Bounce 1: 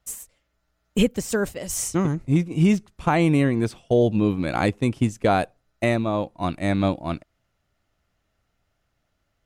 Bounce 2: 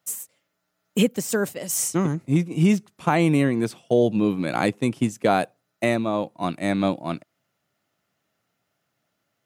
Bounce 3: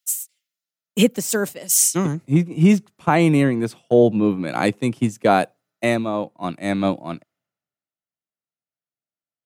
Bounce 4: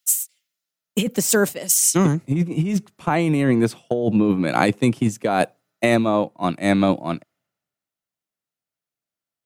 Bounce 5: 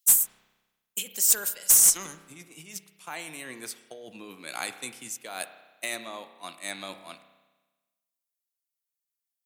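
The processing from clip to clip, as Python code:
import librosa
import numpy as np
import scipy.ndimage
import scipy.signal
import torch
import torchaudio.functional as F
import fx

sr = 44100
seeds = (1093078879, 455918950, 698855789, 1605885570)

y1 = scipy.signal.sosfilt(scipy.signal.butter(4, 130.0, 'highpass', fs=sr, output='sos'), x)
y1 = fx.high_shelf(y1, sr, hz=11000.0, db=9.0)
y2 = fx.band_widen(y1, sr, depth_pct=70)
y2 = F.gain(torch.from_numpy(y2), 2.5).numpy()
y3 = fx.over_compress(y2, sr, threshold_db=-19.0, ratio=-1.0)
y3 = F.gain(torch.from_numpy(y3), 2.0).numpy()
y4 = np.diff(y3, prepend=0.0)
y4 = fx.clip_asym(y4, sr, top_db=-12.5, bottom_db=-9.0)
y4 = fx.rev_spring(y4, sr, rt60_s=1.2, pass_ms=(31,), chirp_ms=30, drr_db=10.0)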